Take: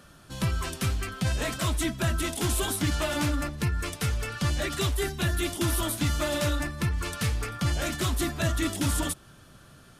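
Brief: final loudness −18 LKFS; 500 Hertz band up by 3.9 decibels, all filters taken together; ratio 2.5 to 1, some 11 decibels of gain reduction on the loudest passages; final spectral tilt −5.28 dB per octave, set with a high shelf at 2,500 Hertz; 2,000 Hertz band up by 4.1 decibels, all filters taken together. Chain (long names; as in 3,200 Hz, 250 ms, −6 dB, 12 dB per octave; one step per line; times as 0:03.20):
parametric band 500 Hz +5.5 dB
parametric band 2,000 Hz +8.5 dB
high-shelf EQ 2,500 Hz −8.5 dB
downward compressor 2.5 to 1, threshold −39 dBFS
level +20 dB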